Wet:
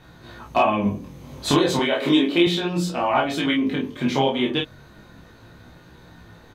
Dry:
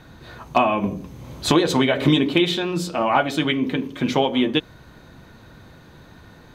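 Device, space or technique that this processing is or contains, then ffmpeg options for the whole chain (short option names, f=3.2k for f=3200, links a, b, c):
double-tracked vocal: -filter_complex "[0:a]asplit=2[a][b];[b]adelay=29,volume=-2dB[c];[a][c]amix=inputs=2:normalize=0,flanger=delay=16.5:depth=4.9:speed=0.34,asettb=1/sr,asplit=3[d][e][f];[d]atrim=end=1.794[g];[e]atrim=start=1.79:end=2.47,asetpts=PTS-STARTPTS,afade=t=in:d=0.004:c=qsin,afade=t=out:st=0.676:d=0.004:c=qsin,highpass=250[h];[f]atrim=start=2.466[i];[g][h]acrossfade=d=0.004:c1=hsin:c2=qsin[j];[j][i]acrossfade=d=0.004:c1=qsin:c2=hsin"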